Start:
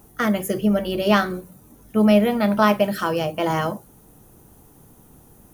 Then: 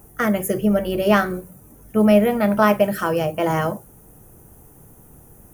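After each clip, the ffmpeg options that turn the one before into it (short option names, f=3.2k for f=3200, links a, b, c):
-af "equalizer=f=250:t=o:w=1:g=-5,equalizer=f=1k:t=o:w=1:g=-4,equalizer=f=4k:t=o:w=1:g=-12,volume=4.5dB"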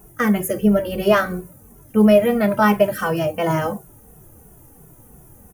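-filter_complex "[0:a]asplit=2[a][b];[b]adelay=2.3,afreqshift=-2.9[c];[a][c]amix=inputs=2:normalize=1,volume=3.5dB"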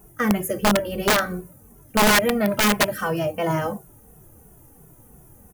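-af "aeval=exprs='(mod(2.66*val(0)+1,2)-1)/2.66':c=same,volume=-3dB"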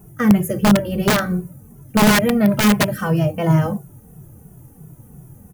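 -af "equalizer=f=140:t=o:w=1.5:g=13.5"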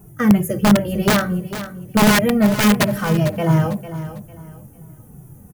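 -af "aecho=1:1:450|900|1350:0.237|0.0688|0.0199"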